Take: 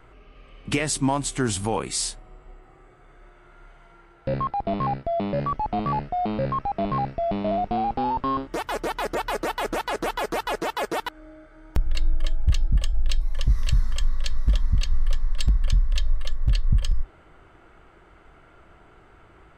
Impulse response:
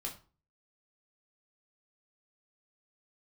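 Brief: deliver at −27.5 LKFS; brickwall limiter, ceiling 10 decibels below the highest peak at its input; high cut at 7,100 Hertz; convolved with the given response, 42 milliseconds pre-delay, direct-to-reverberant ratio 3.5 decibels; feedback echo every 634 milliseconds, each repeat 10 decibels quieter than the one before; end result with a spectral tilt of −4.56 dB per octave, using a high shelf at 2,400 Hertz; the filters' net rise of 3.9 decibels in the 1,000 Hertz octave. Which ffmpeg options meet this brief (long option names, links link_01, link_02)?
-filter_complex "[0:a]lowpass=7100,equalizer=frequency=1000:width_type=o:gain=4,highshelf=frequency=2400:gain=6.5,alimiter=limit=-18dB:level=0:latency=1,aecho=1:1:634|1268|1902|2536:0.316|0.101|0.0324|0.0104,asplit=2[link_01][link_02];[1:a]atrim=start_sample=2205,adelay=42[link_03];[link_02][link_03]afir=irnorm=-1:irlink=0,volume=-3dB[link_04];[link_01][link_04]amix=inputs=2:normalize=0,volume=-2dB"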